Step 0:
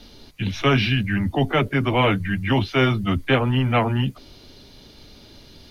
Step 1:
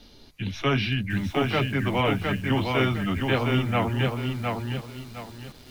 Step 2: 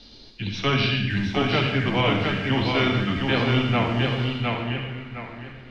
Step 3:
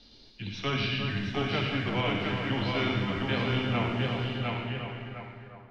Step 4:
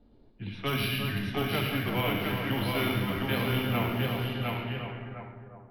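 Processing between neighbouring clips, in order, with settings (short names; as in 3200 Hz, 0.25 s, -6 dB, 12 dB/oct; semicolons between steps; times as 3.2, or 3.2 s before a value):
lo-fi delay 0.71 s, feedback 35%, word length 7-bit, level -3.5 dB; gain -5.5 dB
low-pass sweep 4600 Hz -> 2100 Hz, 4.15–4.91; on a send at -3.5 dB: reverb RT60 0.80 s, pre-delay 52 ms
ending faded out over 0.67 s; split-band echo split 1700 Hz, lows 0.35 s, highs 0.112 s, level -6.5 dB; gain -8 dB
careless resampling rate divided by 3×, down filtered, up hold; low-pass opened by the level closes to 730 Hz, open at -26 dBFS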